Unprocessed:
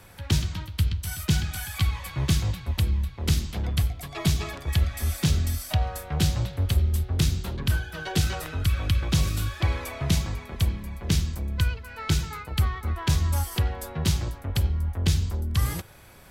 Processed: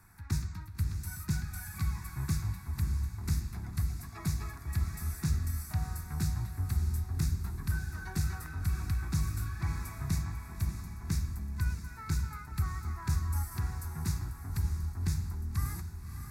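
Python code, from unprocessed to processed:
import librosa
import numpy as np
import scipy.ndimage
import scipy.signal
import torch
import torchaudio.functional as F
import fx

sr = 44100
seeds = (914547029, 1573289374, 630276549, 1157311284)

y = fx.fixed_phaser(x, sr, hz=1300.0, stages=4)
y = fx.echo_diffused(y, sr, ms=606, feedback_pct=41, wet_db=-8.0)
y = y * 10.0 ** (-8.0 / 20.0)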